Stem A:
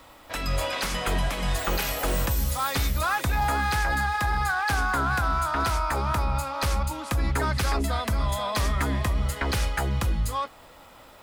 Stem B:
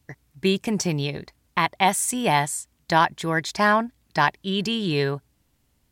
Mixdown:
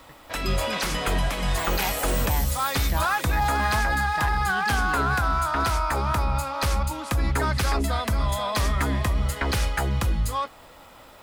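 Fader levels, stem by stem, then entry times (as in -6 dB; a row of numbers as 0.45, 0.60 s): +1.5, -12.5 dB; 0.00, 0.00 s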